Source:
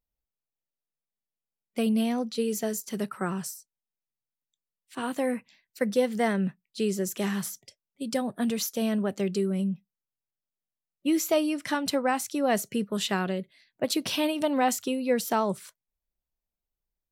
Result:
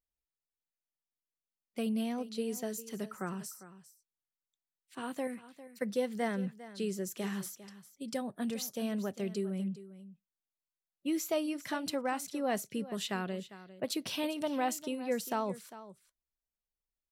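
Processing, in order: 5.27–5.82 bell 610 Hz -8 dB 2.4 oct; on a send: echo 0.401 s -15.5 dB; on the sum: gain -8 dB

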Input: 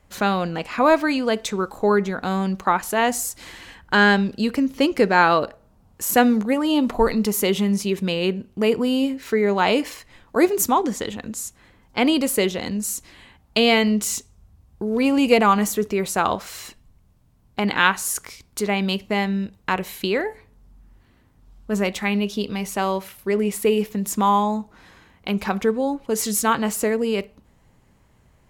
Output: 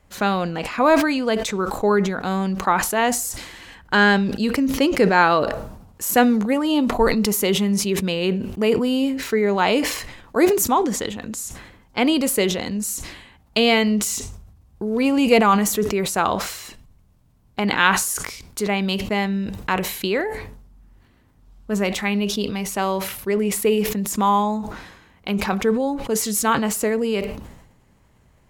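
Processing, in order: sustainer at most 60 dB/s

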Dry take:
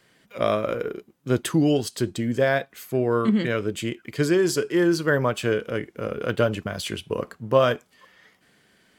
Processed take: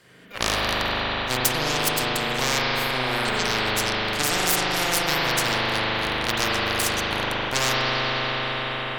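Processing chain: added harmonics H 3 -13 dB, 6 -8 dB, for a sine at -5 dBFS; spring tank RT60 3 s, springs 39 ms, chirp 65 ms, DRR -7 dB; spectral compressor 4:1; gain -2 dB

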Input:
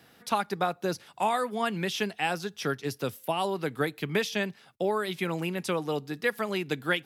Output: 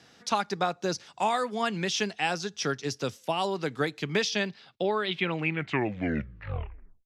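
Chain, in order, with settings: tape stop at the end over 1.72 s; low-pass sweep 6200 Hz -> 2300 Hz, 4.09–5.68

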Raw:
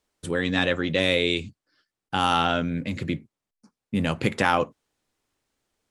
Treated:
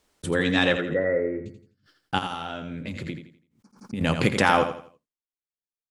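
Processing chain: expander -51 dBFS; 0.77–1.46 rippled Chebyshev low-pass 2000 Hz, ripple 9 dB; 2.18–4.01 compressor 6:1, threshold -32 dBFS, peak gain reduction 14.5 dB; feedback echo 84 ms, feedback 33%, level -9 dB; backwards sustainer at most 140 dB/s; gain +1.5 dB

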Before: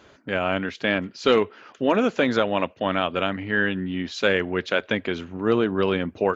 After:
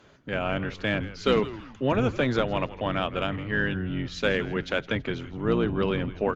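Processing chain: octaver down 1 oct, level 0 dB; added harmonics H 6 -35 dB, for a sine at -4.5 dBFS; on a send: frequency-shifting echo 0.163 s, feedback 37%, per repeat -100 Hz, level -15.5 dB; on the sum: gain -4.5 dB

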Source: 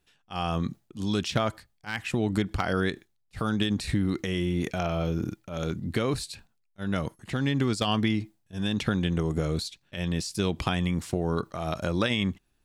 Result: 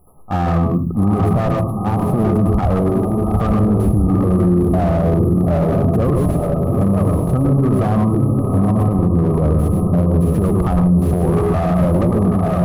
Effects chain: compressor 5:1, threshold -30 dBFS, peak gain reduction 9.5 dB; brick-wall FIR band-stop 1300–9700 Hz; diffused feedback echo 0.867 s, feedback 48%, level -6.5 dB; reverb RT60 0.30 s, pre-delay 0.101 s, DRR 5.5 dB; maximiser +27.5 dB; slew limiter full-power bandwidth 190 Hz; gain -6 dB

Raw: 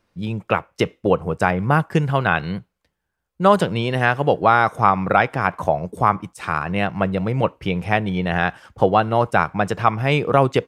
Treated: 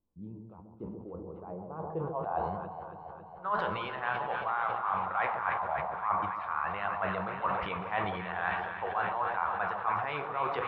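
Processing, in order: graphic EQ 125/250/500/1000/2000/4000/8000 Hz -12/-11/-4/+12/-7/+10/-11 dB; reverse; compressor 6:1, threshold -24 dBFS, peak gain reduction 20 dB; reverse; flange 1.6 Hz, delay 9.5 ms, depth 7.5 ms, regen +50%; low-pass sweep 260 Hz -> 1900 Hz, 0.89–3.69; echo with dull and thin repeats by turns 0.138 s, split 960 Hz, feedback 84%, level -7.5 dB; on a send at -14 dB: reverb RT60 3.0 s, pre-delay 34 ms; on the sum: sustainer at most 38 dB/s; gain -5 dB

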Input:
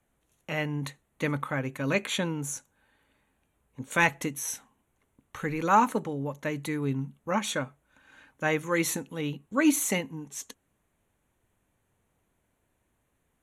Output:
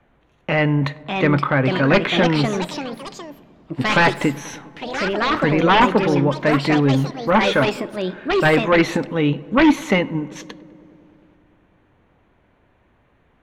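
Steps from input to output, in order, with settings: low shelf 340 Hz -3.5 dB; in parallel at -0.5 dB: level quantiser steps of 13 dB; on the sum: sine folder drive 12 dB, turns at -5 dBFS; air absorption 300 m; echoes that change speed 0.699 s, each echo +4 st, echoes 3, each echo -6 dB; darkening echo 0.1 s, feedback 82%, low-pass 2200 Hz, level -22 dB; on a send at -19.5 dB: reverb, pre-delay 3 ms; on the sum: gain -2.5 dB

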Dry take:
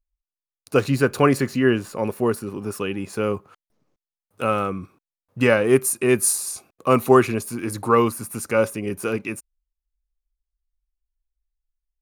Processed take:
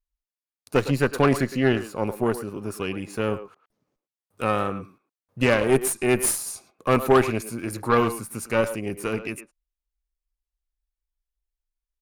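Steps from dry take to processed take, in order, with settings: speakerphone echo 0.11 s, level -10 dB; added harmonics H 6 -19 dB, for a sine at -2 dBFS; vibrato 1.3 Hz 35 cents; gain -3.5 dB

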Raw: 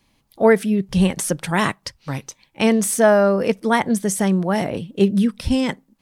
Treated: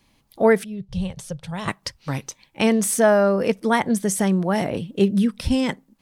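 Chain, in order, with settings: 0.64–1.68 EQ curve 130 Hz 0 dB, 310 Hz -24 dB, 490 Hz -10 dB, 1900 Hz -18 dB, 3600 Hz -9 dB, 8200 Hz -16 dB, 13000 Hz -20 dB; in parallel at -3 dB: compressor, threshold -24 dBFS, peak gain reduction 14 dB; on the sum: gain -3.5 dB

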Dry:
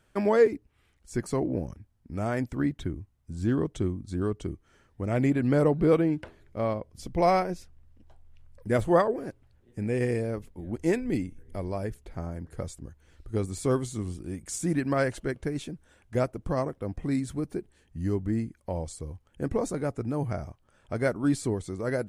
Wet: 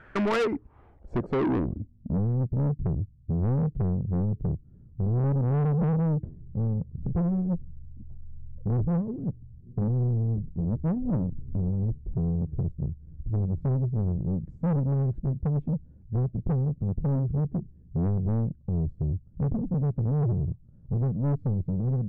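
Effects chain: dynamic EQ 610 Hz, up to -5 dB, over -36 dBFS, Q 0.84; in parallel at +2 dB: compressor, threshold -34 dBFS, peak gain reduction 14.5 dB; on the sum: low-pass sweep 1700 Hz -> 160 Hz, 0.24–2.27; soft clip -28 dBFS, distortion -8 dB; gain +5.5 dB

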